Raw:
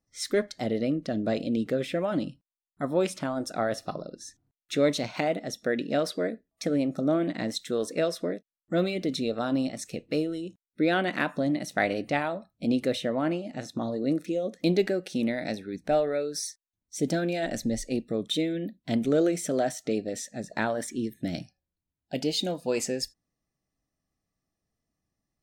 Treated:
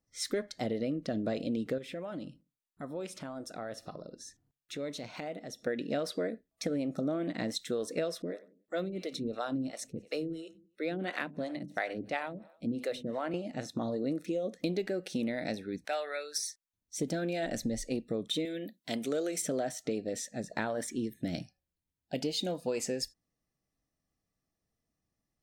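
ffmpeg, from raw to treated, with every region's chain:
ffmpeg -i in.wav -filter_complex "[0:a]asettb=1/sr,asplit=3[link_01][link_02][link_03];[link_01]atrim=end=1.784[link_04];[link_02]atrim=start=1.78:end=5.67,asetpts=PTS-STARTPTS,afade=type=in:duration=0.004:curve=qsin,afade=type=out:start_time=3.886:duration=0.004:curve=qsin,acompressor=threshold=-43dB:ratio=2:attack=3.2:release=140:knee=1:detection=peak,asplit=2[link_05][link_06];[link_06]adelay=64,lowpass=frequency=1100:poles=1,volume=-22dB,asplit=2[link_07][link_08];[link_08]adelay=64,lowpass=frequency=1100:poles=1,volume=0.44,asplit=2[link_09][link_10];[link_10]adelay=64,lowpass=frequency=1100:poles=1,volume=0.44[link_11];[link_05][link_07][link_09][link_11]amix=inputs=4:normalize=0,atrim=end_sample=171549[link_12];[link_03]atrim=start=5.666[link_13];[link_04][link_12]acrossfade=duration=0.004:curve1=hsin:curve2=qsin[link_14];[link_14][link_13]acrossfade=duration=0.004:curve1=qsin:curve2=hsin,asettb=1/sr,asplit=3[link_15][link_16][link_17];[link_15]atrim=end=8.224[link_18];[link_16]atrim=start=8.22:end=13.34,asetpts=PTS-STARTPTS,afade=type=in:duration=0.004:curve=qsin,afade=type=out:start_time=5.116:duration=0.004:curve=qsin,bandreject=frequency=50:width_type=h:width=6,bandreject=frequency=100:width_type=h:width=6,bandreject=frequency=150:width_type=h:width=6,bandreject=frequency=200:width_type=h:width=6,bandreject=frequency=250:width_type=h:width=6,aecho=1:1:92|184|276:0.112|0.046|0.0189,atrim=end_sample=225792,acrossover=split=410[link_19][link_20];[link_19]aeval=exprs='val(0)*(1-1/2+1/2*cos(2*PI*2.9*n/s))':channel_layout=same[link_21];[link_20]aeval=exprs='val(0)*(1-1/2-1/2*cos(2*PI*2.9*n/s))':channel_layout=same[link_22];[link_21][link_22]amix=inputs=2:normalize=0[link_23];[link_17]atrim=start=13.336[link_24];[link_18][link_23]acrossfade=duration=0.004:curve1=hsin:curve2=qsin[link_25];[link_25][link_24]acrossfade=duration=0.004:curve1=qsin:curve2=hsin,asettb=1/sr,asplit=3[link_26][link_27][link_28];[link_26]atrim=end=15.854[link_29];[link_27]atrim=start=15.85:end=16.38,asetpts=PTS-STARTPTS,afade=type=in:duration=0.004:curve=qsin,afade=type=out:start_time=0.526:duration=0.004:curve=qsin,highpass=1200,acontrast=28[link_30];[link_28]atrim=start=16.376[link_31];[link_29][link_30]acrossfade=duration=0.004:curve1=hsin:curve2=qsin[link_32];[link_32][link_31]acrossfade=duration=0.004:curve1=qsin:curve2=hsin,asettb=1/sr,asplit=3[link_33][link_34][link_35];[link_33]atrim=end=18.454[link_36];[link_34]atrim=start=18.45:end=19.42,asetpts=PTS-STARTPTS,afade=type=in:duration=0.004:curve=qsin,afade=type=out:start_time=0.966:duration=0.004:curve=qsin,highpass=frequency=470:poles=1,highshelf=frequency=4400:gain=8.5[link_37];[link_35]atrim=start=19.416[link_38];[link_36][link_37]acrossfade=duration=0.004:curve1=hsin:curve2=qsin[link_39];[link_39][link_38]acrossfade=duration=0.004:curve1=qsin:curve2=hsin,equalizer=frequency=480:width=8:gain=3,acompressor=threshold=-27dB:ratio=6,volume=-2dB" out.wav

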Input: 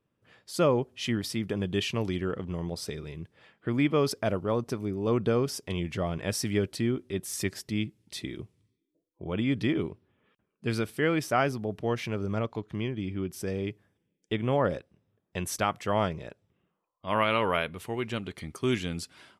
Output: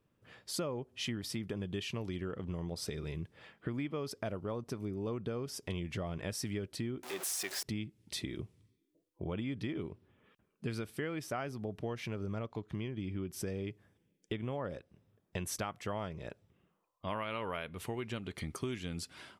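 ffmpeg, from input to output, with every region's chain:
ffmpeg -i in.wav -filter_complex "[0:a]asettb=1/sr,asplit=3[link_01][link_02][link_03];[link_01]atrim=end=7.034[link_04];[link_02]atrim=start=7.03:end=7.63,asetpts=PTS-STARTPTS,afade=type=in:duration=0.004:curve=qsin,afade=type=out:start_time=0.596:duration=0.004:curve=qsin,aeval=exprs='val(0)+0.5*0.0266*sgn(val(0))':channel_layout=same,aeval=exprs='val(0)+0.001*sin(2*PI*740*n/s)':channel_layout=same,highpass=530[link_05];[link_03]atrim=start=7.626[link_06];[link_04][link_05]acrossfade=duration=0.004:curve1=hsin:curve2=qsin[link_07];[link_07][link_06]acrossfade=duration=0.004:curve1=qsin:curve2=hsin,lowshelf=frequency=64:gain=6,acompressor=threshold=-37dB:ratio=6,volume=1.5dB" out.wav

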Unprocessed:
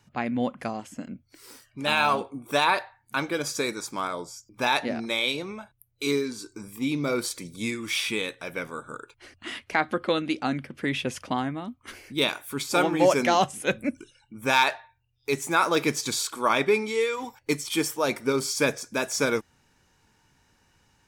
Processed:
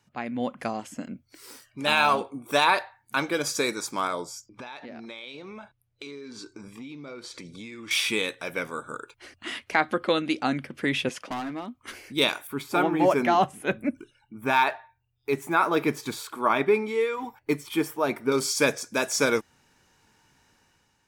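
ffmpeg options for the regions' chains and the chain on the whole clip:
ffmpeg -i in.wav -filter_complex "[0:a]asettb=1/sr,asplit=3[link_01][link_02][link_03];[link_01]atrim=end=4.464[link_04];[link_02]atrim=start=4.46:end=7.91,asetpts=PTS-STARTPTS,afade=type=in:duration=0.004:curve=qsin,afade=type=out:start_time=3.446:duration=0.004:curve=qsin,lowpass=4700,acompressor=threshold=-38dB:ratio=16:attack=3.2:release=140:knee=1:detection=peak[link_05];[link_03]atrim=start=7.906[link_06];[link_04][link_05]acrossfade=duration=0.004:curve1=hsin:curve2=qsin[link_07];[link_07][link_06]acrossfade=duration=0.004:curve1=qsin:curve2=hsin,asettb=1/sr,asplit=3[link_08][link_09][link_10];[link_08]atrim=end=11.094[link_11];[link_09]atrim=start=11.09:end=11.75,asetpts=PTS-STARTPTS,afade=type=in:duration=0.004:curve=qsin,afade=type=out:start_time=0.656:duration=0.004:curve=qsin,highpass=220,highshelf=frequency=6200:gain=-8.5,asoftclip=type=hard:threshold=-30.5dB[link_12];[link_10]atrim=start=11.746[link_13];[link_11][link_12]acrossfade=duration=0.004:curve1=hsin:curve2=qsin[link_14];[link_14][link_13]acrossfade=duration=0.004:curve1=qsin:curve2=hsin,asettb=1/sr,asplit=3[link_15][link_16][link_17];[link_15]atrim=end=12.474[link_18];[link_16]atrim=start=12.47:end=18.32,asetpts=PTS-STARTPTS,afade=type=in:duration=0.004:curve=qsin,afade=type=out:start_time=5.846:duration=0.004:curve=qsin,equalizer=frequency=6500:width_type=o:width=2.1:gain=-15,bandreject=frequency=520:width=6.9[link_19];[link_17]atrim=start=18.316[link_20];[link_18][link_19]acrossfade=duration=0.004:curve1=hsin:curve2=qsin[link_21];[link_21][link_20]acrossfade=duration=0.004:curve1=qsin:curve2=hsin,lowshelf=frequency=130:gain=-7,dynaudnorm=framelen=110:gausssize=9:maxgain=6.5dB,volume=-4dB" out.wav

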